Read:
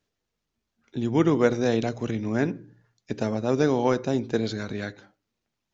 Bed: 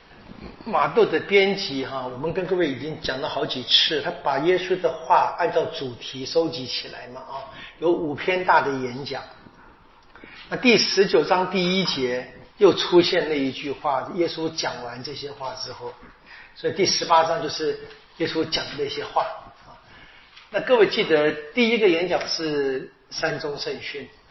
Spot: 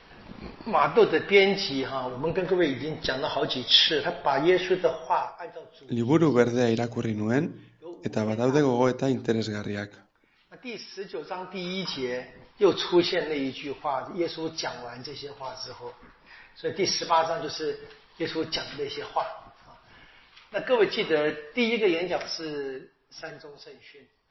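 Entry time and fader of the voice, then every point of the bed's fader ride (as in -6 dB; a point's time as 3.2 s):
4.95 s, 0.0 dB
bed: 4.93 s -1.5 dB
5.6 s -21.5 dB
10.83 s -21.5 dB
12.13 s -5.5 dB
22.11 s -5.5 dB
23.65 s -18 dB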